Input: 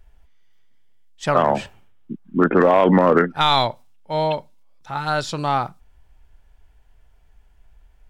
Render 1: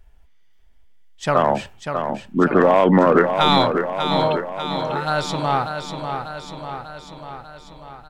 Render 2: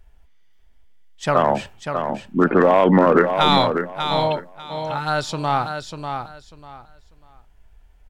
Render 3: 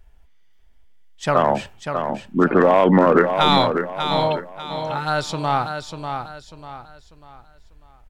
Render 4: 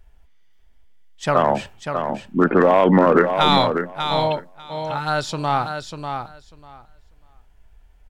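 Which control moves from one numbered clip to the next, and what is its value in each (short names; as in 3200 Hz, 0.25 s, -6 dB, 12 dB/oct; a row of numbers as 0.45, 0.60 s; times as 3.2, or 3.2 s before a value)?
feedback echo, feedback: 61, 22, 35, 15%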